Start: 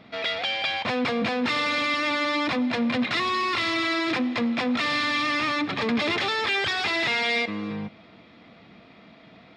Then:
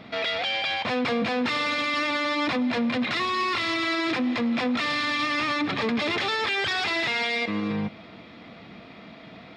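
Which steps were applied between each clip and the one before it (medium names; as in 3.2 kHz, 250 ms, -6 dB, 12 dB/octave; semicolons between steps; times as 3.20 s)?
peak limiter -25 dBFS, peak gain reduction 9 dB; trim +5.5 dB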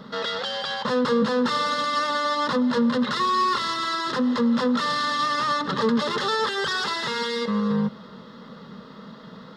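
static phaser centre 470 Hz, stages 8; trim +6 dB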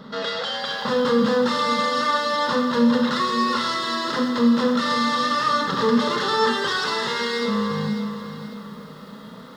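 Schroeder reverb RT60 0.71 s, combs from 26 ms, DRR 3 dB; bit-crushed delay 546 ms, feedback 35%, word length 8-bit, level -10 dB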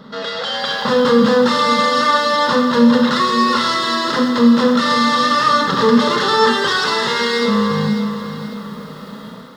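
level rider gain up to 6 dB; trim +1.5 dB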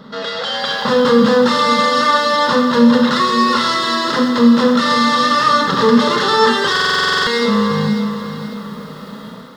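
buffer glitch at 6.71 s, samples 2048, times 11; trim +1 dB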